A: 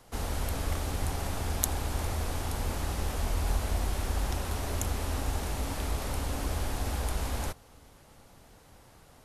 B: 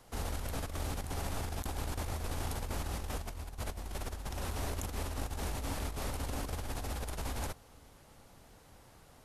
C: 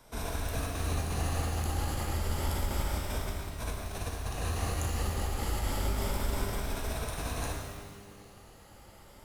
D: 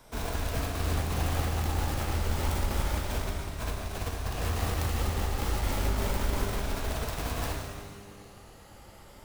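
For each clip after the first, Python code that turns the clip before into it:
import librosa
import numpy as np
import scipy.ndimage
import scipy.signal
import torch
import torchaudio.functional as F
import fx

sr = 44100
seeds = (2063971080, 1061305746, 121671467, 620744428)

y1 = fx.over_compress(x, sr, threshold_db=-32.0, ratio=-0.5)
y1 = y1 * librosa.db_to_amplitude(-4.5)
y2 = fx.spec_ripple(y1, sr, per_octave=1.6, drift_hz=0.3, depth_db=8)
y2 = fx.rev_shimmer(y2, sr, seeds[0], rt60_s=1.4, semitones=12, shimmer_db=-8, drr_db=-0.5)
y3 = fx.self_delay(y2, sr, depth_ms=0.47)
y3 = y3 * librosa.db_to_amplitude(3.0)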